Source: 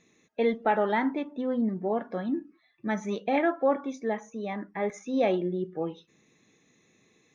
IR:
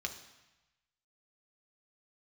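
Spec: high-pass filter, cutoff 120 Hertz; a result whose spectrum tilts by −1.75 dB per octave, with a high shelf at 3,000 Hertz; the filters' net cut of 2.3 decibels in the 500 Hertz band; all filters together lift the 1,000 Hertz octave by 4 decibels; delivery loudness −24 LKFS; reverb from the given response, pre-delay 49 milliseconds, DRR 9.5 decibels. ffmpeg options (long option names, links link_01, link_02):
-filter_complex "[0:a]highpass=120,equalizer=frequency=500:width_type=o:gain=-5,equalizer=frequency=1000:width_type=o:gain=7.5,highshelf=frequency=3000:gain=-3,asplit=2[link_01][link_02];[1:a]atrim=start_sample=2205,adelay=49[link_03];[link_02][link_03]afir=irnorm=-1:irlink=0,volume=-10.5dB[link_04];[link_01][link_04]amix=inputs=2:normalize=0,volume=5dB"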